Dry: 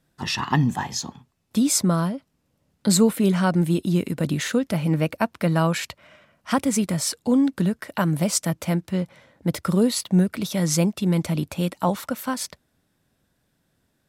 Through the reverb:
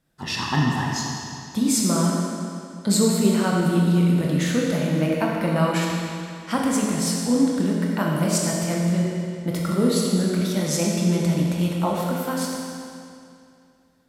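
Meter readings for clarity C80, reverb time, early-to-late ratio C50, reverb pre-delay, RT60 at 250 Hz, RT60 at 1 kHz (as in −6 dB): 0.5 dB, 2.5 s, −0.5 dB, 19 ms, 2.5 s, 2.5 s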